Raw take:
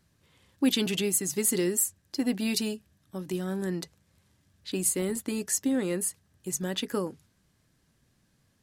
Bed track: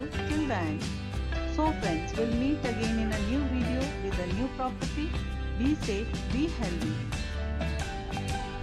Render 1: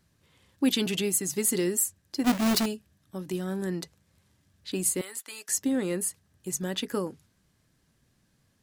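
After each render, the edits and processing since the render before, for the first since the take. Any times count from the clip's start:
0:02.24–0:02.66: each half-wave held at its own peak
0:05.01–0:05.49: high-pass filter 1,100 Hz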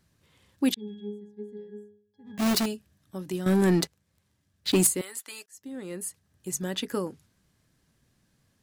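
0:00.74–0:02.38: resonances in every octave G#, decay 0.57 s
0:03.46–0:04.87: leveller curve on the samples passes 3
0:05.46–0:06.53: fade in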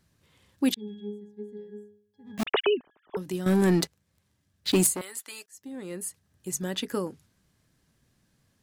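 0:02.43–0:03.17: three sine waves on the formant tracks
0:04.84–0:05.80: saturating transformer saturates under 1,800 Hz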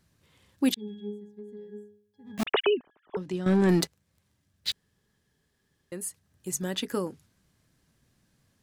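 0:01.19–0:01.66: downward compressor 3 to 1, threshold −39 dBFS
0:02.70–0:03.69: high-frequency loss of the air 98 metres
0:04.72–0:05.92: fill with room tone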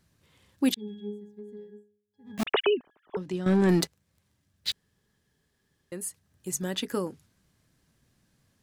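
0:01.60–0:02.31: duck −13.5 dB, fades 0.24 s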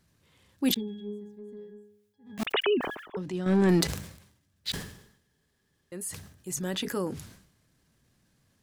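transient designer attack −4 dB, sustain +3 dB
level that may fall only so fast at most 80 dB per second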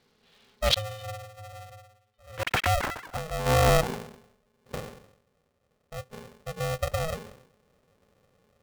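low-pass filter sweep 4,000 Hz → 260 Hz, 0:01.77–0:04.73
ring modulator with a square carrier 320 Hz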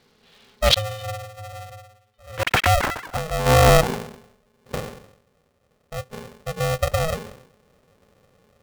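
level +7 dB
brickwall limiter −2 dBFS, peak gain reduction 1 dB

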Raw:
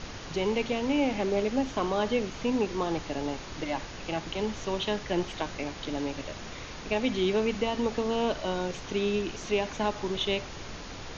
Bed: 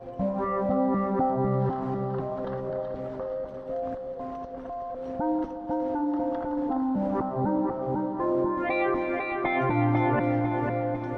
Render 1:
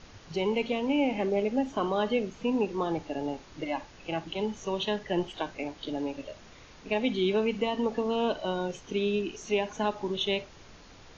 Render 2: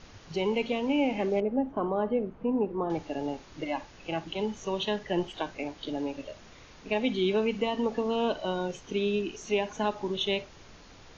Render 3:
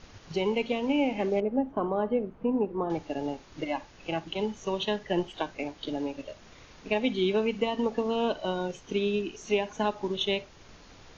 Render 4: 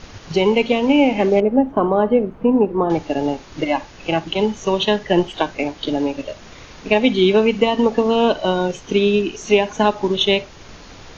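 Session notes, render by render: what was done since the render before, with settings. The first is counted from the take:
noise reduction from a noise print 11 dB
0:01.40–0:02.90: low-pass filter 1,100 Hz
transient designer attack +2 dB, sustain −2 dB
level +12 dB

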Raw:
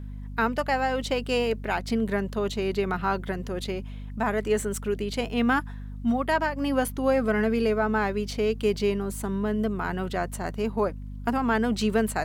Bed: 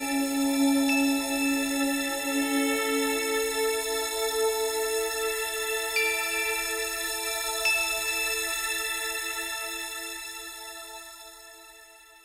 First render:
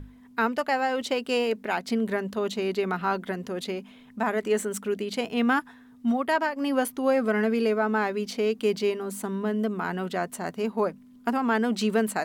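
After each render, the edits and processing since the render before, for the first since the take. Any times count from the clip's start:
mains-hum notches 50/100/150/200 Hz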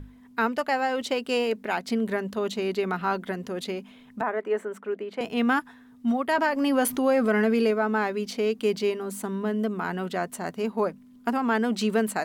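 0:04.21–0:05.21: three-way crossover with the lows and the highs turned down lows −18 dB, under 290 Hz, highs −20 dB, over 2,200 Hz
0:06.38–0:07.71: envelope flattener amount 50%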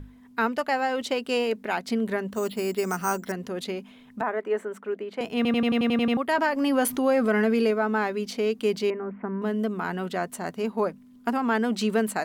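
0:02.32–0:03.32: bad sample-rate conversion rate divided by 6×, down filtered, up hold
0:05.36: stutter in place 0.09 s, 9 plays
0:08.90–0:09.42: Butterworth low-pass 2,300 Hz 48 dB per octave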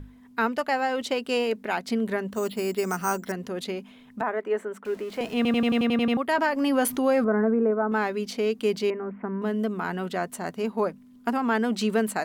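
0:04.85–0:05.83: converter with a step at zero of −41.5 dBFS
0:07.24–0:07.92: inverse Chebyshev low-pass filter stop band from 3,600 Hz, stop band 50 dB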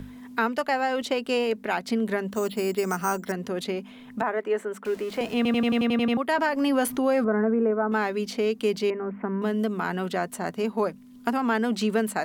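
multiband upward and downward compressor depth 40%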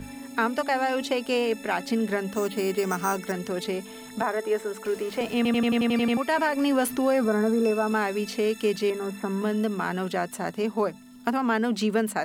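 mix in bed −15.5 dB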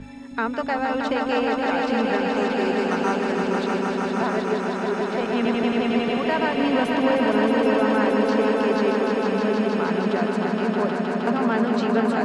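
high-frequency loss of the air 120 metres
echo that builds up and dies away 156 ms, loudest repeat 5, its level −6 dB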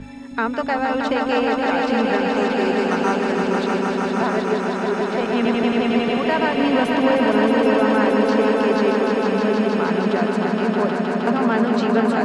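level +3 dB

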